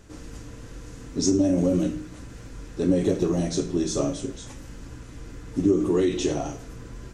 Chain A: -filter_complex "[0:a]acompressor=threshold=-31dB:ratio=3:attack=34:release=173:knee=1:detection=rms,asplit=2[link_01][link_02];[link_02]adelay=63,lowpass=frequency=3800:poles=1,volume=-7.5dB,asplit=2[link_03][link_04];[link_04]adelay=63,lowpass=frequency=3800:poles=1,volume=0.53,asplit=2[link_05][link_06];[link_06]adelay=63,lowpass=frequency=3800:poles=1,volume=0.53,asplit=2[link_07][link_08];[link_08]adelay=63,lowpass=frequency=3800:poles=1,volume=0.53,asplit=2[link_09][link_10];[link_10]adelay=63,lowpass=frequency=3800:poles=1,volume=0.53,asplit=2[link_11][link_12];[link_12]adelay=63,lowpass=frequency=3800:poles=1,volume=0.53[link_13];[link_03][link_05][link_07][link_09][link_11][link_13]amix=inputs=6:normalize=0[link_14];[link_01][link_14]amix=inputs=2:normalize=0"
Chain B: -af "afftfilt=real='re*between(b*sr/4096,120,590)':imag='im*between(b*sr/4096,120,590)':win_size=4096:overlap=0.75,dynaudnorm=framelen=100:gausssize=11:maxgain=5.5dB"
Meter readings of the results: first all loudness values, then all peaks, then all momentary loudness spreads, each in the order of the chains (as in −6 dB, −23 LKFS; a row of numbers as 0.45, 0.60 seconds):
−33.5, −20.0 LKFS; −18.0, −5.0 dBFS; 12, 17 LU